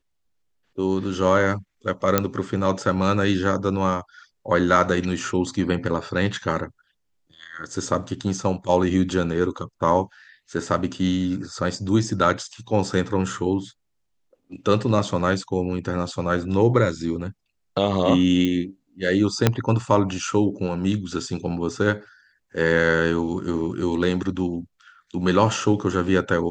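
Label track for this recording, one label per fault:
2.180000	2.180000	click −2 dBFS
18.450000	18.450000	click −12 dBFS
19.470000	19.470000	click −2 dBFS

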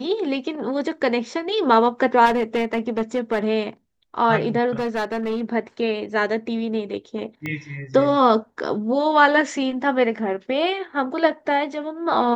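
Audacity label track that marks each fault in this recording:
2.250000	3.460000	clipping −16 dBFS
4.740000	5.420000	clipping −20 dBFS
7.460000	7.460000	click −16 dBFS

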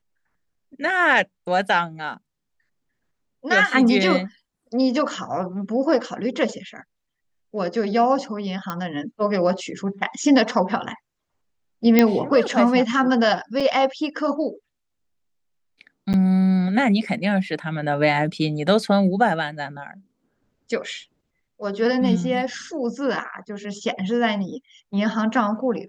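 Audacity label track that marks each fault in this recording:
8.700000	8.700000	click −13 dBFS
11.990000	11.990000	click −2 dBFS
13.600000	13.610000	drop-out 5.1 ms
16.130000	16.140000	drop-out 9.2 ms

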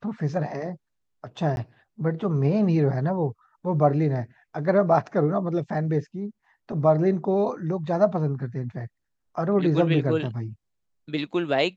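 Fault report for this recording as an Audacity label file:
1.560000	1.570000	drop-out 11 ms

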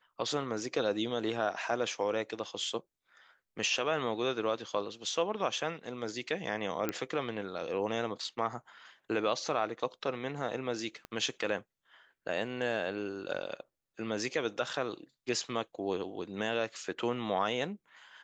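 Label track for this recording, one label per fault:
6.890000	6.890000	click −17 dBFS
11.050000	11.050000	click −27 dBFS

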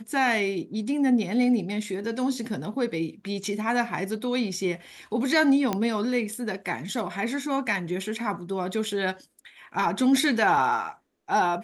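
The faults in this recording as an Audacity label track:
5.730000	5.730000	click −12 dBFS

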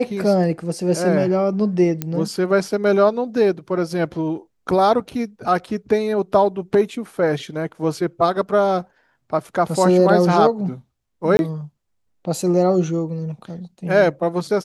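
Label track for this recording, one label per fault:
2.020000	2.020000	click −9 dBFS
11.370000	11.390000	drop-out 21 ms

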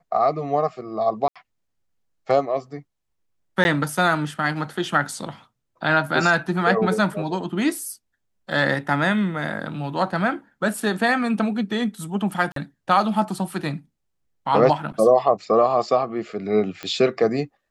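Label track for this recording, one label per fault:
1.280000	1.360000	drop-out 76 ms
3.640000	3.650000	drop-out 11 ms
8.520000	8.520000	drop-out 2.7 ms
12.520000	12.560000	drop-out 43 ms
16.830000	16.830000	click −16 dBFS

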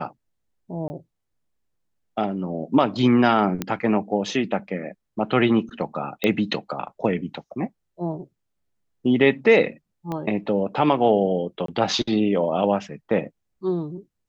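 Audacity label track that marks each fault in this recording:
0.880000	0.900000	drop-out 20 ms
3.620000	3.620000	click −11 dBFS
6.240000	6.240000	click −9 dBFS
10.120000	10.120000	click −17 dBFS
11.660000	11.680000	drop-out 23 ms

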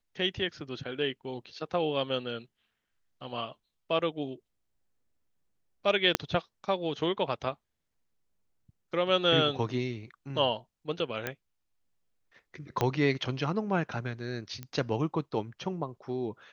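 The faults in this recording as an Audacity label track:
6.150000	6.150000	click −7 dBFS
11.270000	11.270000	click −16 dBFS
12.810000	12.810000	click −13 dBFS
14.630000	14.630000	click −24 dBFS

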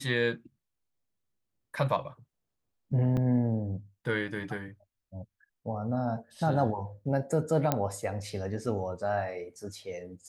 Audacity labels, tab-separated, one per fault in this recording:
3.170000	3.170000	drop-out 4.5 ms
7.720000	7.720000	click −11 dBFS

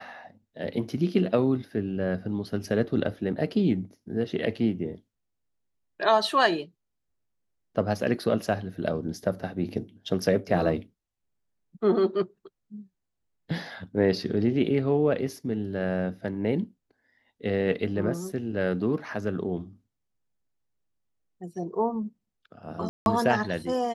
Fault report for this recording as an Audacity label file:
22.890000	23.060000	drop-out 171 ms

